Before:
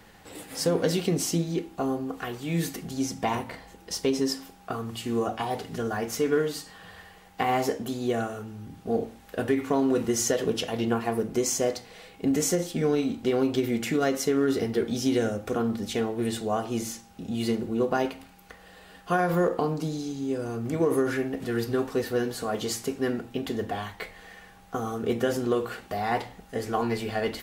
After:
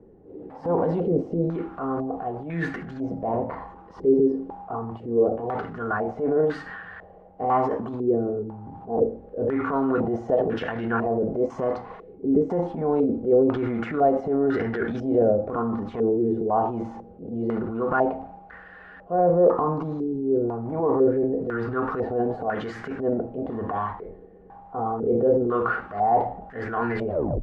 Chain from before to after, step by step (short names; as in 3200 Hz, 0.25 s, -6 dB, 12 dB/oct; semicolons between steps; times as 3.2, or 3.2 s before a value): tape stop at the end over 0.33 s; transient shaper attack -9 dB, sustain +7 dB; stepped low-pass 2 Hz 400–1600 Hz